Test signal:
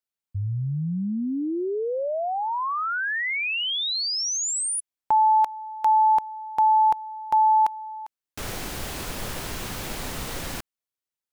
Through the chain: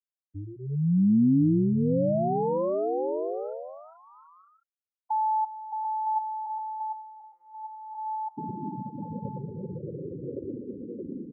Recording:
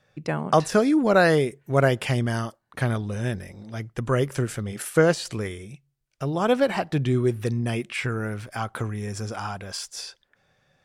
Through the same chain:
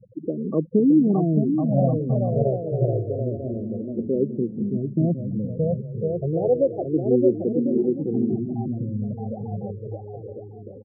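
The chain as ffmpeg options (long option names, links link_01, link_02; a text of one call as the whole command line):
ffmpeg -i in.wav -filter_complex "[0:a]aeval=exprs='val(0)+0.5*0.0473*sgn(val(0))':channel_layout=same,asuperpass=centerf=270:order=4:qfactor=0.67,afftfilt=real='re*gte(hypot(re,im),0.0891)':imag='im*gte(hypot(re,im),0.0891)':win_size=1024:overlap=0.75,aecho=1:1:620|1054|1358|1570|1719:0.631|0.398|0.251|0.158|0.1,asplit=2[link_01][link_02];[link_02]afreqshift=-0.28[link_03];[link_01][link_03]amix=inputs=2:normalize=1,volume=3.5dB" out.wav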